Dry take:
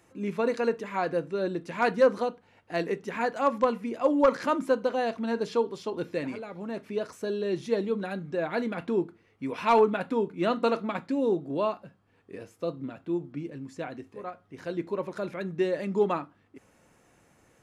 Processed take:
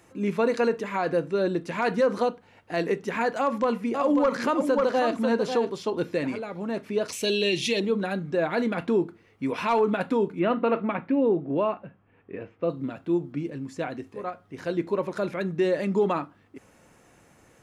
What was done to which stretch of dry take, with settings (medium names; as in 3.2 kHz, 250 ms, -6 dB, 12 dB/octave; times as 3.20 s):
3.40–5.70 s: delay 543 ms -8 dB
7.08–7.80 s: resonant high shelf 1.9 kHz +10.5 dB, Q 3
10.39–12.70 s: Chebyshev low-pass 2.6 kHz, order 3
whole clip: peak limiter -20 dBFS; trim +5 dB